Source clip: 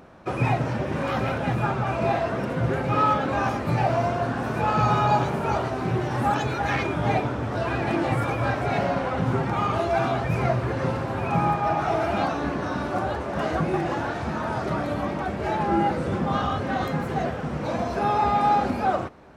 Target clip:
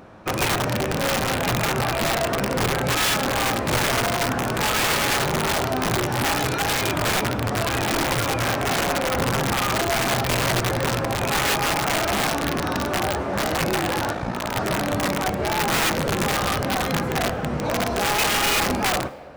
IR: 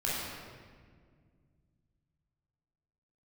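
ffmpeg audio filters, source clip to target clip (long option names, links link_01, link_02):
-filter_complex "[0:a]asplit=2[link_01][link_02];[link_02]alimiter=limit=-20dB:level=0:latency=1:release=14,volume=0dB[link_03];[link_01][link_03]amix=inputs=2:normalize=0,flanger=delay=9.4:depth=7.2:regen=70:speed=0.14:shape=sinusoidal,aeval=exprs='(mod(7.94*val(0)+1,2)-1)/7.94':channel_layout=same,asplit=3[link_04][link_05][link_06];[link_04]afade=type=out:start_time=14.13:duration=0.02[link_07];[link_05]aeval=exprs='val(0)*sin(2*PI*29*n/s)':channel_layout=same,afade=type=in:start_time=14.13:duration=0.02,afade=type=out:start_time=14.54:duration=0.02[link_08];[link_06]afade=type=in:start_time=14.54:duration=0.02[link_09];[link_07][link_08][link_09]amix=inputs=3:normalize=0,asplit=2[link_10][link_11];[link_11]highpass=frequency=530:width_type=q:width=4.9[link_12];[1:a]atrim=start_sample=2205,adelay=59[link_13];[link_12][link_13]afir=irnorm=-1:irlink=0,volume=-29dB[link_14];[link_10][link_14]amix=inputs=2:normalize=0,volume=2dB"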